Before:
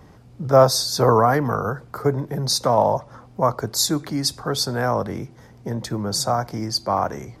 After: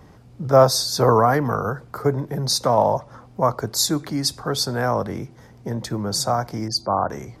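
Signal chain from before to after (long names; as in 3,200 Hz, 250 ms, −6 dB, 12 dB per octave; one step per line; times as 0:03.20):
0:06.68–0:07.10: gate on every frequency bin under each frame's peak −30 dB strong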